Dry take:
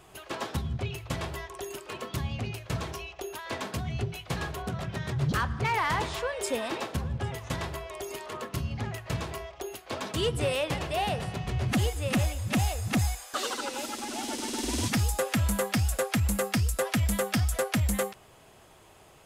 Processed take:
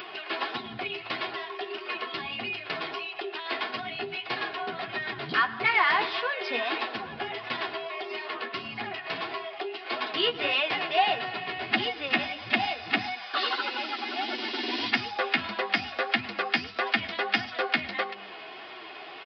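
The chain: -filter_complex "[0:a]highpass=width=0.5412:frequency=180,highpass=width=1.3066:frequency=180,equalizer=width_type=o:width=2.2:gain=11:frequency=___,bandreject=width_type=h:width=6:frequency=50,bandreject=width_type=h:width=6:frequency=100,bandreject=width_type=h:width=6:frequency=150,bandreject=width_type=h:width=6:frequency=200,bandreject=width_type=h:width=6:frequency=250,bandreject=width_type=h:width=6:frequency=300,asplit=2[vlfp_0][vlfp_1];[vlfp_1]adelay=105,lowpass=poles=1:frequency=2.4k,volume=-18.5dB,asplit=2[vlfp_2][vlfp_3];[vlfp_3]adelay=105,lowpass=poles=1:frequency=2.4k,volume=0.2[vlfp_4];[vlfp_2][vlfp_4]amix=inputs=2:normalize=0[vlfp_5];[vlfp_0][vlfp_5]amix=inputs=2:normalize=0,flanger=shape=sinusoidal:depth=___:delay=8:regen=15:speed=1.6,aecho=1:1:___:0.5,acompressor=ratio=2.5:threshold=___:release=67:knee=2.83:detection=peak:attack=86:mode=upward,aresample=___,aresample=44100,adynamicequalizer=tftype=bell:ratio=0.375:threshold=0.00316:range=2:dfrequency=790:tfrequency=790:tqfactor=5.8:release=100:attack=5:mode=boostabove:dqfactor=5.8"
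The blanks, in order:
2.3k, 4.5, 2.8, -39dB, 11025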